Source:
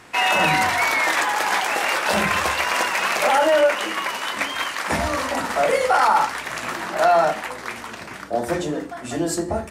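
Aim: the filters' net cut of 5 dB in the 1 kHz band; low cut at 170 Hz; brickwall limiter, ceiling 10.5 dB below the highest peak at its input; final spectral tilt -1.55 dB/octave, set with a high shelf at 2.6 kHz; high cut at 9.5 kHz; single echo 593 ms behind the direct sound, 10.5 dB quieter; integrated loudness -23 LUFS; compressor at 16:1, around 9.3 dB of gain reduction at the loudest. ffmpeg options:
-af "highpass=170,lowpass=9500,equalizer=f=1000:t=o:g=-8,highshelf=f=2600:g=7,acompressor=threshold=0.0631:ratio=16,alimiter=limit=0.0891:level=0:latency=1,aecho=1:1:593:0.299,volume=2.11"

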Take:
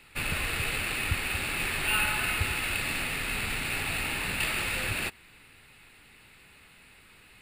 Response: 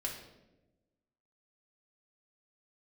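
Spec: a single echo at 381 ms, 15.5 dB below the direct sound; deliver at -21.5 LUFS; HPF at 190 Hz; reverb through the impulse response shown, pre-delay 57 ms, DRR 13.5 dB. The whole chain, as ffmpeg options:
-filter_complex "[0:a]highpass=190,aecho=1:1:381:0.168,asplit=2[s0][s1];[1:a]atrim=start_sample=2205,adelay=57[s2];[s1][s2]afir=irnorm=-1:irlink=0,volume=0.178[s3];[s0][s3]amix=inputs=2:normalize=0,volume=2.24"

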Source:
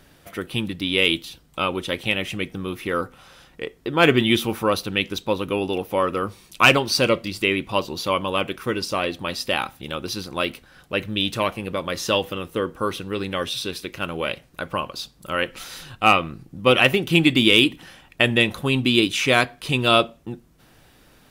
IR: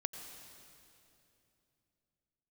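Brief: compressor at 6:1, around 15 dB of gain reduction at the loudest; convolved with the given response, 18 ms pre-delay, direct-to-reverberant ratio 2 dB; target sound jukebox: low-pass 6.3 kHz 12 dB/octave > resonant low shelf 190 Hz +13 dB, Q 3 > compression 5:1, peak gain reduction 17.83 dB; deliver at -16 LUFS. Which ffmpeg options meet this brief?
-filter_complex "[0:a]acompressor=threshold=0.0447:ratio=6,asplit=2[s0][s1];[1:a]atrim=start_sample=2205,adelay=18[s2];[s1][s2]afir=irnorm=-1:irlink=0,volume=0.794[s3];[s0][s3]amix=inputs=2:normalize=0,lowpass=6300,lowshelf=f=190:t=q:w=3:g=13,acompressor=threshold=0.0355:ratio=5,volume=7.08"

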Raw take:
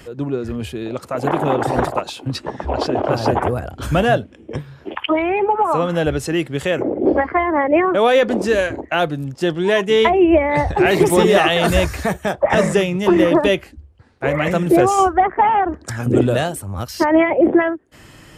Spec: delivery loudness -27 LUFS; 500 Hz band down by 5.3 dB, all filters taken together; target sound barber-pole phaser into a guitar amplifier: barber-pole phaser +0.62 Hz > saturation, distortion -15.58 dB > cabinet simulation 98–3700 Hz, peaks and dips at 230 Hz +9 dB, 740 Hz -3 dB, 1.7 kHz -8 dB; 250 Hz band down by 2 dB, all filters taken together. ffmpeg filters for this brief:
-filter_complex "[0:a]equalizer=f=250:t=o:g=-4,equalizer=f=500:t=o:g=-5.5,asplit=2[s0][s1];[s1]afreqshift=0.62[s2];[s0][s2]amix=inputs=2:normalize=1,asoftclip=threshold=0.178,highpass=98,equalizer=f=230:t=q:w=4:g=9,equalizer=f=740:t=q:w=4:g=-3,equalizer=f=1700:t=q:w=4:g=-8,lowpass=f=3700:w=0.5412,lowpass=f=3700:w=1.3066,volume=0.841"

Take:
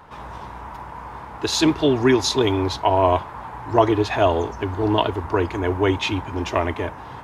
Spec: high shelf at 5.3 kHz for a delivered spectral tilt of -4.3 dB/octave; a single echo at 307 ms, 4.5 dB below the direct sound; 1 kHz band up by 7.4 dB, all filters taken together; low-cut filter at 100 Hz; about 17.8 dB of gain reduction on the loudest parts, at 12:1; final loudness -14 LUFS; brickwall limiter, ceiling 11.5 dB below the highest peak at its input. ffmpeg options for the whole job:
-af "highpass=100,equalizer=f=1000:t=o:g=8.5,highshelf=f=5300:g=5.5,acompressor=threshold=0.0708:ratio=12,alimiter=limit=0.106:level=0:latency=1,aecho=1:1:307:0.596,volume=5.31"

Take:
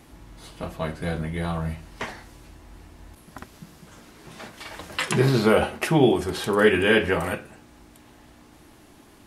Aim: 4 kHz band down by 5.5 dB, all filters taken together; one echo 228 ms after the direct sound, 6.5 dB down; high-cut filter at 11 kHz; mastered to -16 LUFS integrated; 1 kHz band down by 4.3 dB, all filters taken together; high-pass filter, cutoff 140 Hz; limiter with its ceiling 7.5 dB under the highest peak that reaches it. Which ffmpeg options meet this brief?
-af "highpass=140,lowpass=11000,equalizer=f=1000:t=o:g=-5.5,equalizer=f=4000:t=o:g=-7.5,alimiter=limit=0.178:level=0:latency=1,aecho=1:1:228:0.473,volume=3.55"

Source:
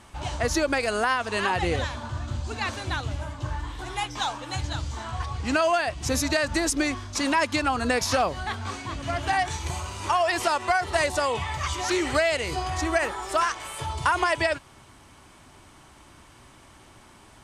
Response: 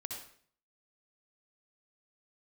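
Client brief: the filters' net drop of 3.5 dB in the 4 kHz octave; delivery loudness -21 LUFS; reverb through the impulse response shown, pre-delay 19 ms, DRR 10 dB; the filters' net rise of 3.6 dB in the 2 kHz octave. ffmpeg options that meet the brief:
-filter_complex "[0:a]equalizer=f=2000:t=o:g=6,equalizer=f=4000:t=o:g=-7,asplit=2[s0][s1];[1:a]atrim=start_sample=2205,adelay=19[s2];[s1][s2]afir=irnorm=-1:irlink=0,volume=0.355[s3];[s0][s3]amix=inputs=2:normalize=0,volume=1.58"

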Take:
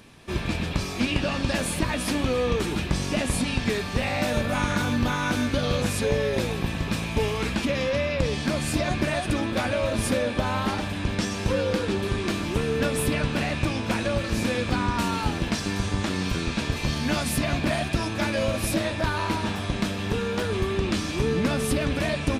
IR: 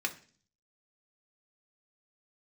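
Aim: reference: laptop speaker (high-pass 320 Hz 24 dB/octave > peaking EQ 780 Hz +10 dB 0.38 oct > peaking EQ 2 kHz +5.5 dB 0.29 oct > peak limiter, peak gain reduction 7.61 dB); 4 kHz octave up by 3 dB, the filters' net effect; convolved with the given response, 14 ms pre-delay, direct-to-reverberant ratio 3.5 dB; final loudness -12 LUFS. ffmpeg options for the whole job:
-filter_complex "[0:a]equalizer=f=4000:t=o:g=3.5,asplit=2[s0][s1];[1:a]atrim=start_sample=2205,adelay=14[s2];[s1][s2]afir=irnorm=-1:irlink=0,volume=0.376[s3];[s0][s3]amix=inputs=2:normalize=0,highpass=f=320:w=0.5412,highpass=f=320:w=1.3066,equalizer=f=780:t=o:w=0.38:g=10,equalizer=f=2000:t=o:w=0.29:g=5.5,volume=5.31,alimiter=limit=0.708:level=0:latency=1"

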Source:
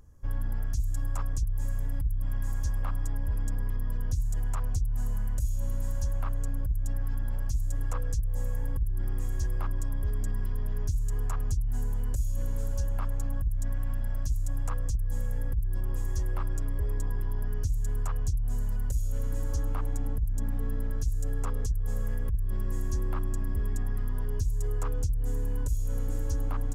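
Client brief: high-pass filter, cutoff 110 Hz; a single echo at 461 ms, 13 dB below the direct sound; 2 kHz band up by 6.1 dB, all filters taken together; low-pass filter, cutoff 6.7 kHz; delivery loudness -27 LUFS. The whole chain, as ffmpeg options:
-af "highpass=110,lowpass=6700,equalizer=f=2000:t=o:g=8,aecho=1:1:461:0.224,volume=4.73"

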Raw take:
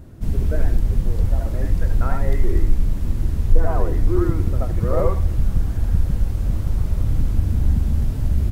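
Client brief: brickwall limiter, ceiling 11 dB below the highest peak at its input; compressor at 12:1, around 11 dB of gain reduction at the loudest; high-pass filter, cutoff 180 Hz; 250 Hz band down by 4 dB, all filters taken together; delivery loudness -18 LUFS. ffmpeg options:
-af "highpass=180,equalizer=f=250:t=o:g=-4,acompressor=threshold=0.0355:ratio=12,volume=14.1,alimiter=limit=0.355:level=0:latency=1"

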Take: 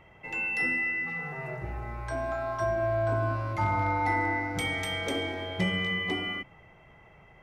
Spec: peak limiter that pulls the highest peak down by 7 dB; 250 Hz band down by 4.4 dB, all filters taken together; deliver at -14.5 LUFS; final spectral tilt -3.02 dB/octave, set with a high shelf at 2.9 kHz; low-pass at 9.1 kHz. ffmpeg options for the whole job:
-af "lowpass=9100,equalizer=f=250:t=o:g=-6.5,highshelf=f=2900:g=-4,volume=8.41,alimiter=limit=0.501:level=0:latency=1"

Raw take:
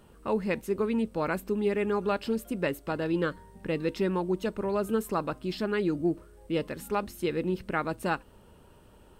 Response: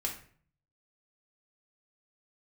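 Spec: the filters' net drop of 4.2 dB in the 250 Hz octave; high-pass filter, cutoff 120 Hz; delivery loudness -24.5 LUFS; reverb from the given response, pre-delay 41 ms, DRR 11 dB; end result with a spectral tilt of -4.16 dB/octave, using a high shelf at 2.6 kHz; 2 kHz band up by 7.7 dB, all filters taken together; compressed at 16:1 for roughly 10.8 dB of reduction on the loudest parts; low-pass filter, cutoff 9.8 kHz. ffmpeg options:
-filter_complex "[0:a]highpass=120,lowpass=9800,equalizer=f=250:t=o:g=-6,equalizer=f=2000:t=o:g=7,highshelf=f=2600:g=7.5,acompressor=threshold=0.0282:ratio=16,asplit=2[s0][s1];[1:a]atrim=start_sample=2205,adelay=41[s2];[s1][s2]afir=irnorm=-1:irlink=0,volume=0.211[s3];[s0][s3]amix=inputs=2:normalize=0,volume=3.98"

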